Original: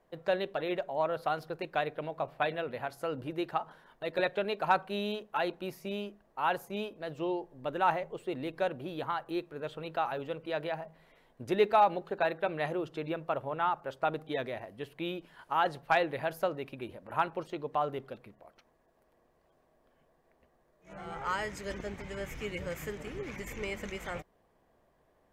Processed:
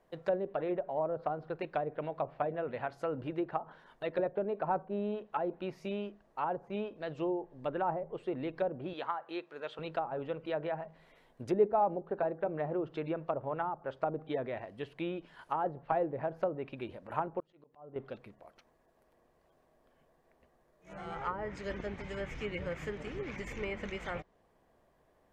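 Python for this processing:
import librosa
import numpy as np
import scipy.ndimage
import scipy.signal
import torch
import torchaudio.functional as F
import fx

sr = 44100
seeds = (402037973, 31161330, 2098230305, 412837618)

y = fx.weighting(x, sr, curve='A', at=(8.93, 9.79))
y = fx.env_lowpass_down(y, sr, base_hz=670.0, full_db=-28.0)
y = fx.auto_swell(y, sr, attack_ms=608.0, at=(17.4, 17.96))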